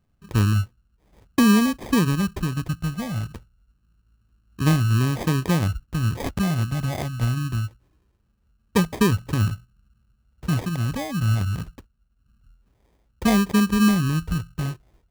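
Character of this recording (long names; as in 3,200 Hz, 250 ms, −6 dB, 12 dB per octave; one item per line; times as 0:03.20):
phaser sweep stages 6, 0.25 Hz, lowest notch 390–2,200 Hz
aliases and images of a low sample rate 1,400 Hz, jitter 0%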